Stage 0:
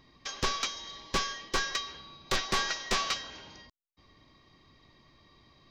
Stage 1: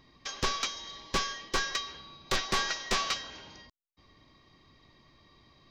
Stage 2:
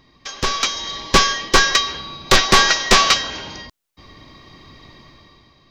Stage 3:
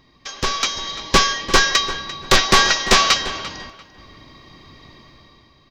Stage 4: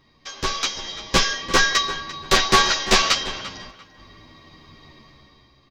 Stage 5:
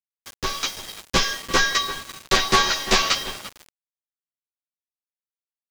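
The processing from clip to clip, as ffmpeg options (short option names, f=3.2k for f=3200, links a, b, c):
-af anull
-af "dynaudnorm=f=120:g=11:m=11dB,volume=6dB"
-filter_complex "[0:a]asplit=2[a][b];[b]adelay=344,lowpass=f=3.8k:p=1,volume=-14dB,asplit=2[c][d];[d]adelay=344,lowpass=f=3.8k:p=1,volume=0.27,asplit=2[e][f];[f]adelay=344,lowpass=f=3.8k:p=1,volume=0.27[g];[a][c][e][g]amix=inputs=4:normalize=0,volume=-1dB"
-filter_complex "[0:a]asplit=2[a][b];[b]adelay=10.2,afreqshift=-0.42[c];[a][c]amix=inputs=2:normalize=1"
-af "aeval=exprs='val(0)*gte(abs(val(0)),0.0335)':c=same,volume=-2dB"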